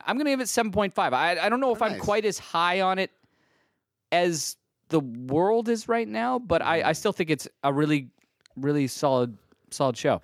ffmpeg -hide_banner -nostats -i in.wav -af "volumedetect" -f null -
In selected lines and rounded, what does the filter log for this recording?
mean_volume: -25.9 dB
max_volume: -8.2 dB